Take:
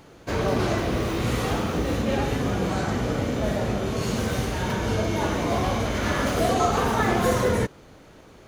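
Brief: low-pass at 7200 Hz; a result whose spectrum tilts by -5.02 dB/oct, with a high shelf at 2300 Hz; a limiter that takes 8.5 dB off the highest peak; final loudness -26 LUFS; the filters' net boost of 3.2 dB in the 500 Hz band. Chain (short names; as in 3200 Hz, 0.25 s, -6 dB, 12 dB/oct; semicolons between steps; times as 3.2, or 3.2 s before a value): LPF 7200 Hz; bell 500 Hz +3.5 dB; high shelf 2300 Hz +6 dB; gain -0.5 dB; limiter -16.5 dBFS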